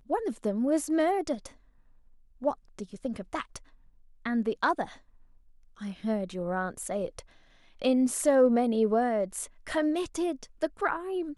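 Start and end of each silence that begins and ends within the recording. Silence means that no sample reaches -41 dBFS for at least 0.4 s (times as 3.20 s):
1.49–2.42 s
3.58–4.25 s
4.94–5.81 s
7.20–7.82 s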